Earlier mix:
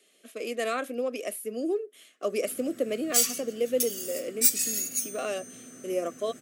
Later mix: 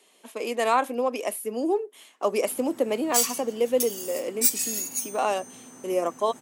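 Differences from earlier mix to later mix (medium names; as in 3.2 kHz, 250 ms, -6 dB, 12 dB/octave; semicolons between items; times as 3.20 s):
speech +3.5 dB; master: remove Butterworth band-stop 910 Hz, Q 1.7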